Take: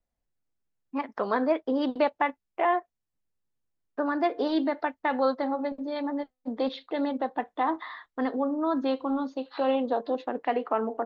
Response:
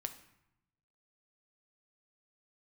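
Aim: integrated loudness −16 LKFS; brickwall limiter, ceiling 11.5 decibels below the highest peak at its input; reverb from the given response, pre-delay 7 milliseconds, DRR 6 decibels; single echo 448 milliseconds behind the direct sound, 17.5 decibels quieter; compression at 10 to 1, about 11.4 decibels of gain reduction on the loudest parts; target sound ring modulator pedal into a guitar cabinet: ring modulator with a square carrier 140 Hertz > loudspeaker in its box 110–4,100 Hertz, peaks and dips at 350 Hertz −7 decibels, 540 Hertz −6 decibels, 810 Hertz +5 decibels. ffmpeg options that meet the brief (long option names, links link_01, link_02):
-filter_complex "[0:a]acompressor=threshold=-31dB:ratio=10,alimiter=level_in=7dB:limit=-24dB:level=0:latency=1,volume=-7dB,aecho=1:1:448:0.133,asplit=2[link_01][link_02];[1:a]atrim=start_sample=2205,adelay=7[link_03];[link_02][link_03]afir=irnorm=-1:irlink=0,volume=-4.5dB[link_04];[link_01][link_04]amix=inputs=2:normalize=0,aeval=exprs='val(0)*sgn(sin(2*PI*140*n/s))':channel_layout=same,highpass=110,equalizer=frequency=350:width_type=q:width=4:gain=-7,equalizer=frequency=540:width_type=q:width=4:gain=-6,equalizer=frequency=810:width_type=q:width=4:gain=5,lowpass=frequency=4100:width=0.5412,lowpass=frequency=4100:width=1.3066,volume=23.5dB"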